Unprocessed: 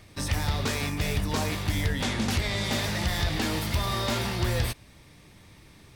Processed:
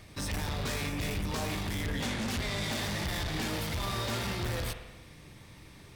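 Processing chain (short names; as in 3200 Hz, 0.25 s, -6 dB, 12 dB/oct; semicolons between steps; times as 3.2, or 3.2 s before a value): soft clip -30.5 dBFS, distortion -8 dB; spring tank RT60 1.1 s, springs 45 ms, chirp 80 ms, DRR 6.5 dB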